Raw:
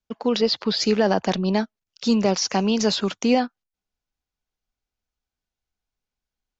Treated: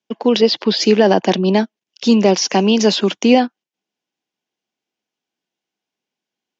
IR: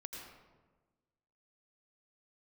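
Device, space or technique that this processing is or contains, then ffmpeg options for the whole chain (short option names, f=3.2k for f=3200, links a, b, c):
television speaker: -af "highpass=f=170:w=0.5412,highpass=f=170:w=1.3066,equalizer=f=340:t=q:w=4:g=6,equalizer=f=1.3k:t=q:w=4:g=-7,equalizer=f=3k:t=q:w=4:g=4,equalizer=f=4.3k:t=q:w=4:g=-4,lowpass=f=6.7k:w=0.5412,lowpass=f=6.7k:w=1.3066,volume=7dB"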